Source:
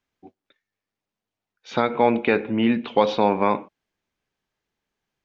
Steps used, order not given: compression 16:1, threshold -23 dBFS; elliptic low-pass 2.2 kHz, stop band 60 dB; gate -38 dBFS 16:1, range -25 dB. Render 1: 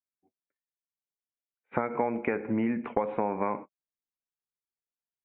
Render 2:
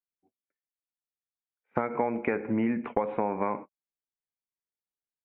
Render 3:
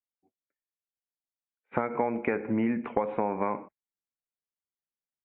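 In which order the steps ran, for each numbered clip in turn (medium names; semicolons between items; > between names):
compression > gate > elliptic low-pass; elliptic low-pass > compression > gate; gate > elliptic low-pass > compression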